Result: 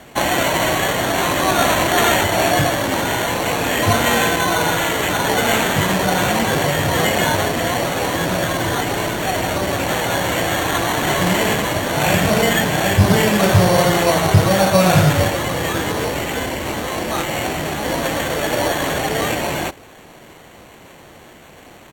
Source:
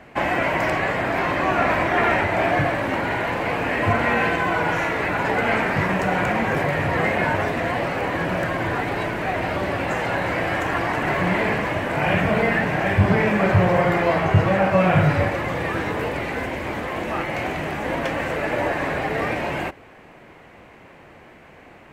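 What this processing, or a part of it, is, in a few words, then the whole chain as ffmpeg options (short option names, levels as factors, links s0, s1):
crushed at another speed: -af "asetrate=55125,aresample=44100,acrusher=samples=7:mix=1:aa=0.000001,asetrate=35280,aresample=44100,volume=1.58"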